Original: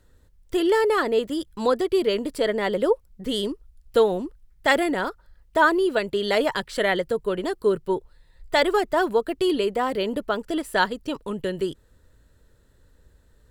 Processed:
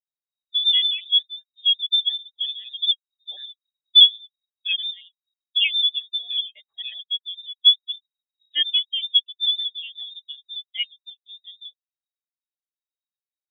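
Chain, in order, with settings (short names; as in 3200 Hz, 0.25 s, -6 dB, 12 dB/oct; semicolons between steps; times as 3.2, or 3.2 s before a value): trilling pitch shifter -7.5 st, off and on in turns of 91 ms; inverted band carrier 3800 Hz; spectral expander 2.5:1; gain +1.5 dB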